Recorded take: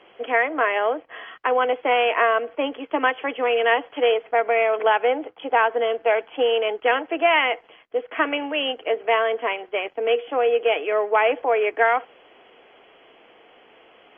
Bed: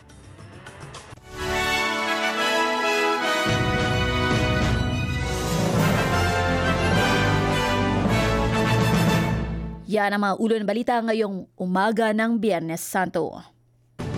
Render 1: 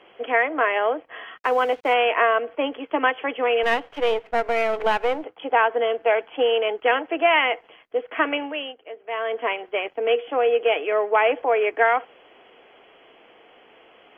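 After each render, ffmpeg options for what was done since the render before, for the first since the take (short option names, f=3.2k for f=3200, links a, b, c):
-filter_complex "[0:a]asettb=1/sr,asplit=3[a][b][c];[a]atrim=end=1.394[d];[b]atrim=start=1.39:end=1.94,asetpts=PTS-STARTPTS,afade=t=in:d=0.004:c=qsin,afade=t=out:st=0.546:d=0.004:c=qsin,aeval=exprs='sgn(val(0))*max(abs(val(0))-0.00631,0)':c=same[e];[c]atrim=start=1.936[f];[d][e]acrossfade=d=0.004:c1=hsin:c2=qsin[g];[g][f]acrossfade=d=0.004:c1=qsin:c2=hsin,asettb=1/sr,asplit=3[h][i][j];[h]atrim=end=3.634[k];[i]atrim=start=3.63:end=5.24,asetpts=PTS-STARTPTS,afade=t=in:d=0.004:c=qsin,afade=t=out:st=1.606:d=0.004:c=qsin,aeval=exprs='if(lt(val(0),0),0.447*val(0),val(0))':c=same[l];[j]atrim=start=5.236[m];[k][l]acrossfade=d=0.004:c1=hsin:c2=qsin[n];[n][m]acrossfade=d=0.004:c1=qsin:c2=hsin,asplit=3[o][p][q];[o]atrim=end=8.75,asetpts=PTS-STARTPTS,afade=t=out:st=8.36:d=0.39:silence=0.188365[r];[p]atrim=start=8.75:end=9.06,asetpts=PTS-STARTPTS,volume=-14.5dB[s];[q]atrim=start=9.06,asetpts=PTS-STARTPTS,afade=t=in:d=0.39:silence=0.188365[t];[r][s][t]concat=n=3:v=0:a=1"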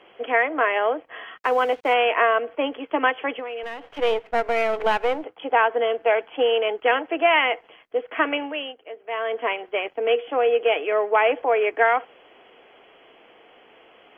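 -filter_complex "[0:a]asettb=1/sr,asplit=3[a][b][c];[a]atrim=end=3.394[d];[b]atrim=start=3.39:end=3.99,asetpts=PTS-STARTPTS,afade=t=in:d=0.004:c=qsin,afade=t=out:st=0.596:d=0.004:c=qsin,acompressor=threshold=-29dB:ratio=6:attack=3.2:release=140:knee=1:detection=peak[e];[c]atrim=start=3.986[f];[d][e]acrossfade=d=0.004:c1=hsin:c2=qsin[g];[g][f]acrossfade=d=0.004:c1=qsin:c2=hsin"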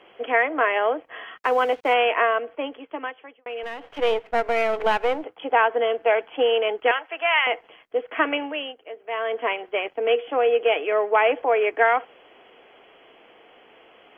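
-filter_complex "[0:a]asettb=1/sr,asplit=3[a][b][c];[a]atrim=end=6.914[d];[b]atrim=start=6.91:end=7.47,asetpts=PTS-STARTPTS,afade=t=in:d=0.004:c=qsin,afade=t=out:st=0.556:d=0.004:c=qsin,highpass=960[e];[c]atrim=start=7.466[f];[d][e]acrossfade=d=0.004:c1=hsin:c2=qsin[g];[g][f]acrossfade=d=0.004:c1=qsin:c2=hsin,asplit=2[h][i];[h]atrim=end=3.46,asetpts=PTS-STARTPTS,afade=t=out:st=2.02:d=1.44[j];[i]atrim=start=3.46,asetpts=PTS-STARTPTS,afade=t=in:d=0.004:c=hsin[k];[j][k]concat=n=2:v=0:a=1"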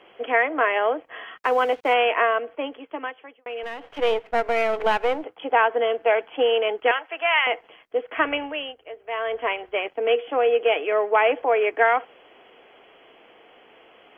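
-filter_complex "[0:a]asettb=1/sr,asplit=3[a][b][c];[a]atrim=end=8.164[d];[b]atrim=start=8.16:end=9.76,asetpts=PTS-STARTPTS,afade=t=in:d=0.004:c=qsin,afade=t=out:st=1.596:d=0.004:c=qsin,lowshelf=f=130:t=q:w=1.5:g=13[e];[c]atrim=start=9.756[f];[d][e]acrossfade=d=0.004:c1=hsin:c2=qsin[g];[g][f]acrossfade=d=0.004:c1=qsin:c2=hsin"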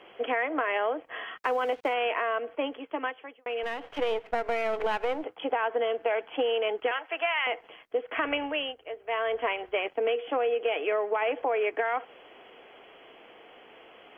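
-af "alimiter=limit=-13dB:level=0:latency=1:release=13,acompressor=threshold=-24dB:ratio=6"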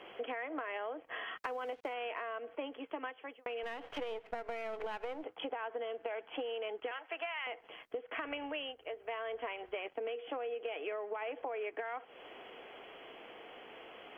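-af "acompressor=threshold=-39dB:ratio=4"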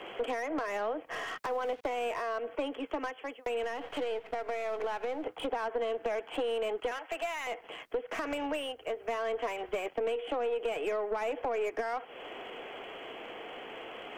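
-filter_complex "[0:a]aeval=exprs='0.0841*(cos(1*acos(clip(val(0)/0.0841,-1,1)))-cos(1*PI/2))+0.0376*(cos(2*acos(clip(val(0)/0.0841,-1,1)))-cos(2*PI/2))+0.0266*(cos(4*acos(clip(val(0)/0.0841,-1,1)))-cos(4*PI/2))+0.0266*(cos(5*acos(clip(val(0)/0.0841,-1,1)))-cos(5*PI/2))':c=same,acrossover=split=300|1100[a][b][c];[c]asoftclip=type=tanh:threshold=-38.5dB[d];[a][b][d]amix=inputs=3:normalize=0"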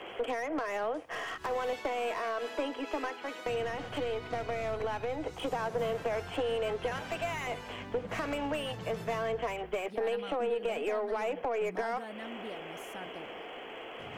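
-filter_complex "[1:a]volume=-22.5dB[a];[0:a][a]amix=inputs=2:normalize=0"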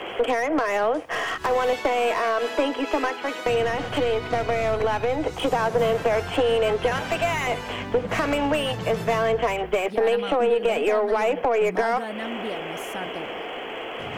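-af "volume=11dB"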